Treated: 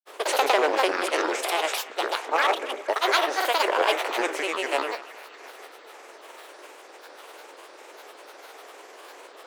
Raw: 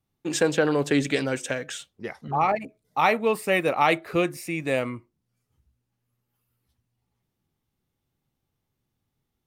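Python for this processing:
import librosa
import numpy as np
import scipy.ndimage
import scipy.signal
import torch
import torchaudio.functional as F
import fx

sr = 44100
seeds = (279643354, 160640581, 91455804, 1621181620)

p1 = fx.bin_compress(x, sr, power=0.4)
p2 = fx.granulator(p1, sr, seeds[0], grain_ms=100.0, per_s=20.0, spray_ms=100.0, spread_st=12)
p3 = scipy.signal.sosfilt(scipy.signal.butter(6, 370.0, 'highpass', fs=sr, output='sos'), p2)
p4 = p3 + fx.echo_banded(p3, sr, ms=237, feedback_pct=70, hz=1800.0, wet_db=-16.0, dry=0)
y = F.gain(torch.from_numpy(p4), -3.0).numpy()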